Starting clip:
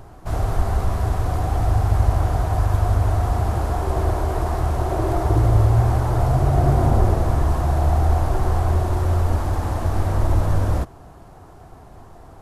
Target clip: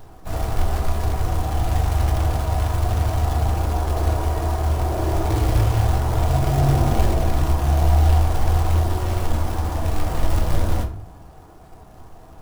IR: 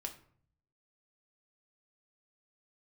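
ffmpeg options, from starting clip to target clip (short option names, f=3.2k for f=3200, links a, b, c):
-filter_complex "[0:a]acrusher=bits=4:mode=log:mix=0:aa=0.000001[a];[1:a]atrim=start_sample=2205[b];[a][b]afir=irnorm=-1:irlink=0"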